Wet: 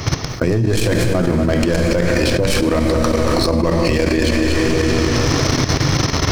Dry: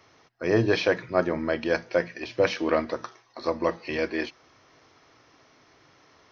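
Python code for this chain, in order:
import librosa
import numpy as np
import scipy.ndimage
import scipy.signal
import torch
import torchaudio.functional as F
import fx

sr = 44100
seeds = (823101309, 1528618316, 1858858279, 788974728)

p1 = fx.tracing_dist(x, sr, depth_ms=0.11)
p2 = fx.low_shelf(p1, sr, hz=230.0, db=12.0)
p3 = fx.rev_plate(p2, sr, seeds[0], rt60_s=2.6, hf_ratio=0.9, predelay_ms=0, drr_db=6.5)
p4 = fx.level_steps(p3, sr, step_db=11)
p5 = fx.leveller(p4, sr, passes=1)
p6 = fx.bass_treble(p5, sr, bass_db=8, treble_db=10)
p7 = p6 + fx.echo_single(p6, sr, ms=235, db=-16.0, dry=0)
p8 = fx.env_flatten(p7, sr, amount_pct=100)
y = p8 * 10.0 ** (-3.0 / 20.0)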